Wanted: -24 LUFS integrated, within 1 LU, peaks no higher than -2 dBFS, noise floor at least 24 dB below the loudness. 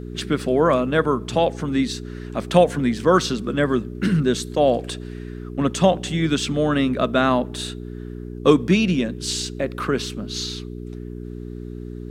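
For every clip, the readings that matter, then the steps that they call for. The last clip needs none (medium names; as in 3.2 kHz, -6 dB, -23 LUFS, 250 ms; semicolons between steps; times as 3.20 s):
hum 60 Hz; highest harmonic 420 Hz; hum level -32 dBFS; loudness -21.0 LUFS; peak level -2.0 dBFS; loudness target -24.0 LUFS
-> de-hum 60 Hz, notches 7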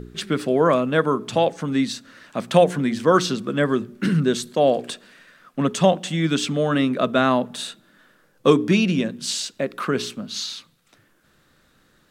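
hum not found; loudness -21.5 LUFS; peak level -2.5 dBFS; loudness target -24.0 LUFS
-> trim -2.5 dB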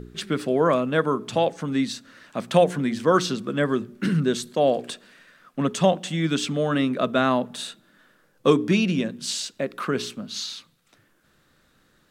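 loudness -24.0 LUFS; peak level -5.0 dBFS; noise floor -63 dBFS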